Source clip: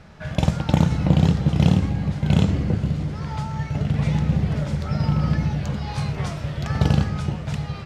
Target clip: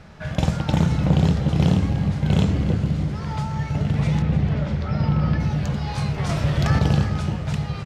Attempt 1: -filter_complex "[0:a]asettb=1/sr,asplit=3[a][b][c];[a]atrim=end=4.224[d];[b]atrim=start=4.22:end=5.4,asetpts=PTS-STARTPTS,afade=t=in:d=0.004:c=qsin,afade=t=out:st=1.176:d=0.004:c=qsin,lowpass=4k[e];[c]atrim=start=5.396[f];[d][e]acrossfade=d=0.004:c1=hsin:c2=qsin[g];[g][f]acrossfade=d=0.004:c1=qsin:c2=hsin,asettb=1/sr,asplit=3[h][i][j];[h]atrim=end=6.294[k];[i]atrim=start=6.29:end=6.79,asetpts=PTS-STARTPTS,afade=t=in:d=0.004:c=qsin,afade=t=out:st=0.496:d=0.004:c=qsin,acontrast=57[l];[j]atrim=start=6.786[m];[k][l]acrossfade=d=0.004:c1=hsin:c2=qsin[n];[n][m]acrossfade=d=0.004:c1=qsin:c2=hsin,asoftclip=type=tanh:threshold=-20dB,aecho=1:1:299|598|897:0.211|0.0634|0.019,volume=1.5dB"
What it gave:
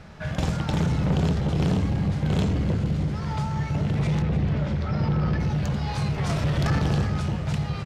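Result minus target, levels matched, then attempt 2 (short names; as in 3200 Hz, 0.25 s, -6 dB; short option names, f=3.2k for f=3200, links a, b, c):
soft clip: distortion +8 dB
-filter_complex "[0:a]asettb=1/sr,asplit=3[a][b][c];[a]atrim=end=4.224[d];[b]atrim=start=4.22:end=5.4,asetpts=PTS-STARTPTS,afade=t=in:d=0.004:c=qsin,afade=t=out:st=1.176:d=0.004:c=qsin,lowpass=4k[e];[c]atrim=start=5.396[f];[d][e]acrossfade=d=0.004:c1=hsin:c2=qsin[g];[g][f]acrossfade=d=0.004:c1=qsin:c2=hsin,asettb=1/sr,asplit=3[h][i][j];[h]atrim=end=6.294[k];[i]atrim=start=6.29:end=6.79,asetpts=PTS-STARTPTS,afade=t=in:d=0.004:c=qsin,afade=t=out:st=0.496:d=0.004:c=qsin,acontrast=57[l];[j]atrim=start=6.786[m];[k][l]acrossfade=d=0.004:c1=hsin:c2=qsin[n];[n][m]acrossfade=d=0.004:c1=qsin:c2=hsin,asoftclip=type=tanh:threshold=-11dB,aecho=1:1:299|598|897:0.211|0.0634|0.019,volume=1.5dB"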